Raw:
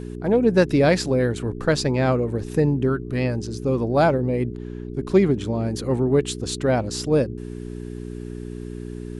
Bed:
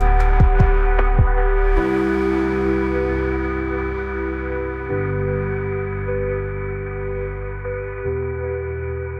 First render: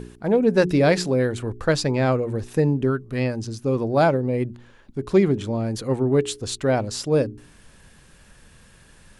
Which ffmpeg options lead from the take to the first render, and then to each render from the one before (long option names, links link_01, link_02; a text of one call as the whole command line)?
ffmpeg -i in.wav -af "bandreject=frequency=60:width_type=h:width=4,bandreject=frequency=120:width_type=h:width=4,bandreject=frequency=180:width_type=h:width=4,bandreject=frequency=240:width_type=h:width=4,bandreject=frequency=300:width_type=h:width=4,bandreject=frequency=360:width_type=h:width=4,bandreject=frequency=420:width_type=h:width=4" out.wav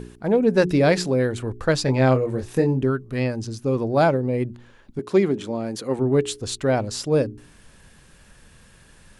ffmpeg -i in.wav -filter_complex "[0:a]asettb=1/sr,asplit=3[link_01][link_02][link_03];[link_01]atrim=end=1.854[link_04];[link_02]atrim=start=1.85:end=2.83,asetpts=PTS-STARTPTS,afade=type=in:duration=0.004:curve=qsin,afade=type=out:start_time=0.976:duration=0.004:curve=qsin,asplit=2[link_05][link_06];[link_06]adelay=23,volume=-5dB[link_07];[link_05][link_07]amix=inputs=2:normalize=0,atrim=end_sample=43218[link_08];[link_03]atrim=start=2.826[link_09];[link_04][link_08]acrossfade=duration=0.004:curve1=hsin:curve2=qsin[link_10];[link_10][link_09]acrossfade=duration=0.004:curve1=qsin:curve2=hsin,asettb=1/sr,asplit=3[link_11][link_12][link_13];[link_11]atrim=end=4.994[link_14];[link_12]atrim=start=4.99:end=5.99,asetpts=PTS-STARTPTS,afade=type=in:duration=0.004:curve=qsin,afade=type=out:start_time=0.996:duration=0.004:curve=qsin,highpass=200[link_15];[link_13]atrim=start=5.986[link_16];[link_14][link_15]acrossfade=duration=0.004:curve1=hsin:curve2=qsin[link_17];[link_17][link_16]acrossfade=duration=0.004:curve1=qsin:curve2=hsin" out.wav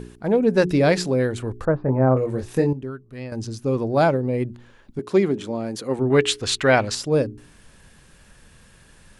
ffmpeg -i in.wav -filter_complex "[0:a]asettb=1/sr,asplit=3[link_01][link_02][link_03];[link_01]atrim=end=1.654[link_04];[link_02]atrim=start=1.65:end=2.17,asetpts=PTS-STARTPTS,afade=type=in:duration=0.004:curve=qsin,afade=type=out:start_time=0.516:duration=0.004:curve=qsin,lowpass=frequency=1300:width=0.5412,lowpass=frequency=1300:width=1.3066[link_05];[link_03]atrim=start=2.166[link_06];[link_04][link_05]acrossfade=duration=0.004:curve1=hsin:curve2=qsin[link_07];[link_07][link_06]acrossfade=duration=0.004:curve1=qsin:curve2=hsin,asettb=1/sr,asplit=3[link_08][link_09][link_10];[link_08]atrim=end=6.104[link_11];[link_09]atrim=start=6.1:end=6.95,asetpts=PTS-STARTPTS,afade=type=in:duration=0.004:curve=qsin,afade=type=out:start_time=0.846:duration=0.004:curve=qsin,equalizer=frequency=2100:width=0.49:gain=13[link_12];[link_10]atrim=start=6.946[link_13];[link_11][link_12]acrossfade=duration=0.004:curve1=hsin:curve2=qsin[link_14];[link_14][link_13]acrossfade=duration=0.004:curve1=qsin:curve2=hsin,asplit=3[link_15][link_16][link_17];[link_15]atrim=end=2.732[link_18];[link_16]atrim=start=2.728:end=3.322,asetpts=PTS-STARTPTS,volume=-10.5dB[link_19];[link_17]atrim=start=3.318[link_20];[link_18][link_19]acrossfade=duration=0.004:curve1=hsin:curve2=hsin[link_21];[link_21][link_20]acrossfade=duration=0.004:curve1=hsin:curve2=hsin" out.wav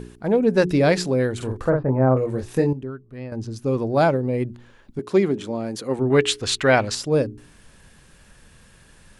ffmpeg -i in.wav -filter_complex "[0:a]asettb=1/sr,asplit=3[link_01][link_02][link_03];[link_01]atrim=end=1.364[link_04];[link_02]atrim=start=1.36:end=1.83,asetpts=PTS-STARTPTS,afade=type=in:duration=0.004:curve=qsin,afade=type=out:start_time=0.466:duration=0.004:curve=qsin,asplit=2[link_05][link_06];[link_06]adelay=47,volume=-4dB[link_07];[link_05][link_07]amix=inputs=2:normalize=0,atrim=end_sample=20727[link_08];[link_03]atrim=start=1.826[link_09];[link_04][link_08]acrossfade=duration=0.004:curve1=hsin:curve2=qsin[link_10];[link_10][link_09]acrossfade=duration=0.004:curve1=qsin:curve2=hsin,asettb=1/sr,asplit=3[link_11][link_12][link_13];[link_11]atrim=end=2.834[link_14];[link_12]atrim=start=2.83:end=3.56,asetpts=PTS-STARTPTS,afade=type=in:duration=0.004:curve=qsin,afade=type=out:start_time=0.726:duration=0.004:curve=qsin,highshelf=frequency=2700:gain=-10[link_15];[link_13]atrim=start=3.556[link_16];[link_14][link_15]acrossfade=duration=0.004:curve1=hsin:curve2=qsin[link_17];[link_17][link_16]acrossfade=duration=0.004:curve1=qsin:curve2=hsin" out.wav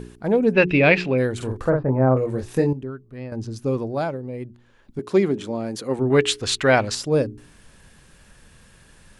ffmpeg -i in.wav -filter_complex "[0:a]asettb=1/sr,asplit=3[link_01][link_02][link_03];[link_01]atrim=end=0.534[link_04];[link_02]atrim=start=0.53:end=1.18,asetpts=PTS-STARTPTS,afade=type=in:duration=0.004:curve=qsin,afade=type=out:start_time=0.646:duration=0.004:curve=qsin,lowpass=frequency=2600:width_type=q:width=6.8[link_05];[link_03]atrim=start=1.176[link_06];[link_04][link_05]acrossfade=duration=0.004:curve1=hsin:curve2=qsin[link_07];[link_07][link_06]acrossfade=duration=0.004:curve1=qsin:curve2=hsin,asplit=3[link_08][link_09][link_10];[link_08]atrim=end=4.05,asetpts=PTS-STARTPTS,afade=type=out:start_time=3.66:duration=0.39:silence=0.375837[link_11];[link_09]atrim=start=4.05:end=4.64,asetpts=PTS-STARTPTS,volume=-8.5dB[link_12];[link_10]atrim=start=4.64,asetpts=PTS-STARTPTS,afade=type=in:duration=0.39:silence=0.375837[link_13];[link_11][link_12][link_13]concat=n=3:v=0:a=1" out.wav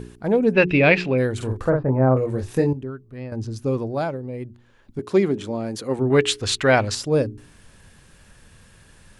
ffmpeg -i in.wav -af "equalizer=frequency=97:width_type=o:width=0.32:gain=6.5" out.wav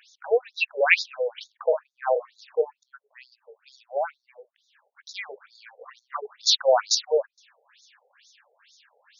ffmpeg -i in.wav -af "crystalizer=i=2.5:c=0,afftfilt=real='re*between(b*sr/1024,590*pow(5000/590,0.5+0.5*sin(2*PI*2.2*pts/sr))/1.41,590*pow(5000/590,0.5+0.5*sin(2*PI*2.2*pts/sr))*1.41)':imag='im*between(b*sr/1024,590*pow(5000/590,0.5+0.5*sin(2*PI*2.2*pts/sr))/1.41,590*pow(5000/590,0.5+0.5*sin(2*PI*2.2*pts/sr))*1.41)':win_size=1024:overlap=0.75" out.wav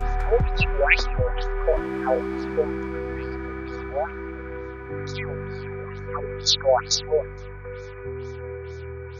ffmpeg -i in.wav -i bed.wav -filter_complex "[1:a]volume=-10dB[link_01];[0:a][link_01]amix=inputs=2:normalize=0" out.wav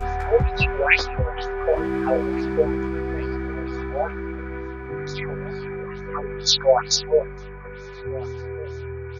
ffmpeg -i in.wav -filter_complex "[0:a]asplit=2[link_01][link_02];[link_02]adelay=15,volume=-3dB[link_03];[link_01][link_03]amix=inputs=2:normalize=0,asplit=2[link_04][link_05];[link_05]adelay=1458,volume=-19dB,highshelf=frequency=4000:gain=-32.8[link_06];[link_04][link_06]amix=inputs=2:normalize=0" out.wav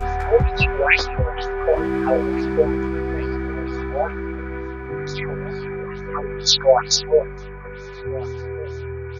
ffmpeg -i in.wav -af "volume=2.5dB,alimiter=limit=-1dB:level=0:latency=1" out.wav